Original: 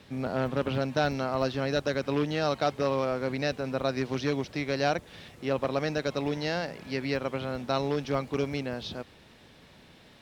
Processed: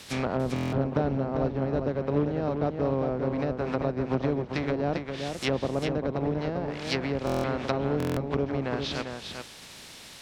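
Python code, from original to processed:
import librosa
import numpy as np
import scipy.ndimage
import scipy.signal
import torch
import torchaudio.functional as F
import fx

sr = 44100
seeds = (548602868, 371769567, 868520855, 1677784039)

y = fx.spec_flatten(x, sr, power=0.6)
y = fx.env_lowpass_down(y, sr, base_hz=540.0, full_db=-25.5)
y = fx.peak_eq(y, sr, hz=7000.0, db=8.5, octaves=2.6)
y = y + 10.0 ** (-6.0 / 20.0) * np.pad(y, (int(397 * sr / 1000.0), 0))[:len(y)]
y = fx.buffer_glitch(y, sr, at_s=(0.54, 7.25, 7.98), block=1024, repeats=7)
y = F.gain(torch.from_numpy(y), 3.5).numpy()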